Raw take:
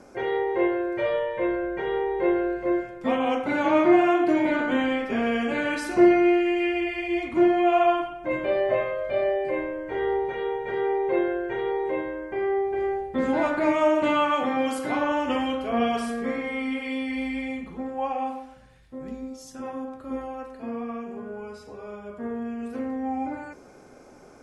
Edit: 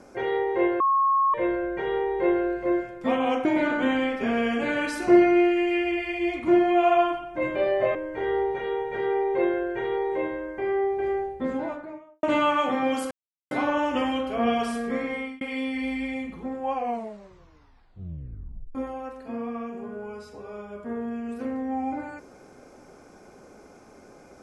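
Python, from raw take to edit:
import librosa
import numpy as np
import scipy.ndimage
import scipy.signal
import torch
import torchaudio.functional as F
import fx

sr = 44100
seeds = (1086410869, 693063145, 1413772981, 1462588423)

y = fx.studio_fade_out(x, sr, start_s=12.75, length_s=1.22)
y = fx.edit(y, sr, fx.bleep(start_s=0.8, length_s=0.54, hz=1090.0, db=-18.0),
    fx.cut(start_s=3.45, length_s=0.89),
    fx.cut(start_s=8.84, length_s=0.85),
    fx.insert_silence(at_s=14.85, length_s=0.4),
    fx.fade_out_span(start_s=16.5, length_s=0.25),
    fx.tape_stop(start_s=18.06, length_s=2.03), tone=tone)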